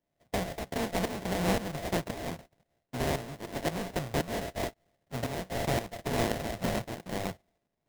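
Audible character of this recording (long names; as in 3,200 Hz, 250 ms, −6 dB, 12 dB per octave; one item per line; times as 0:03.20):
a buzz of ramps at a fixed pitch in blocks of 64 samples
tremolo saw up 1.9 Hz, depth 75%
aliases and images of a low sample rate 1,300 Hz, jitter 20%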